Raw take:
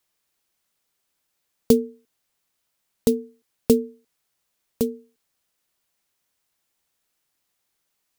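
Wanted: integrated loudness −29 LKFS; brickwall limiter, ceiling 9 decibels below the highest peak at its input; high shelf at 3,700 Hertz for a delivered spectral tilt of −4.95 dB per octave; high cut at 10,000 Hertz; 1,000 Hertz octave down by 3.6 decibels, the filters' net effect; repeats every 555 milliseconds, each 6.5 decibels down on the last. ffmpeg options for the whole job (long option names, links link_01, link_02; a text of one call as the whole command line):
ffmpeg -i in.wav -af "lowpass=10000,equalizer=frequency=1000:width_type=o:gain=-5.5,highshelf=frequency=3700:gain=4.5,alimiter=limit=-11.5dB:level=0:latency=1,aecho=1:1:555|1110|1665|2220|2775|3330:0.473|0.222|0.105|0.0491|0.0231|0.0109,volume=1.5dB" out.wav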